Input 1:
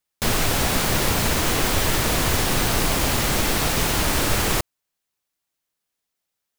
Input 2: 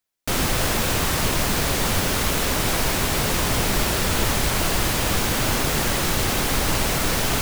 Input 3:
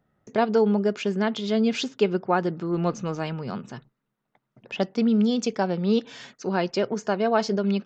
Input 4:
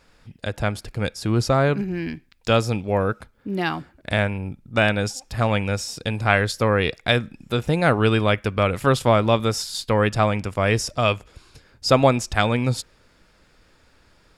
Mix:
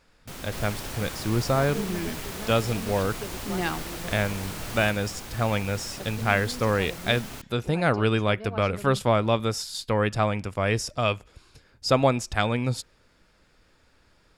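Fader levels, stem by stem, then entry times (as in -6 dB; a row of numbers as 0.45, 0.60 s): -17.0, -18.0, -16.5, -4.5 dB; 0.30, 0.00, 1.20, 0.00 s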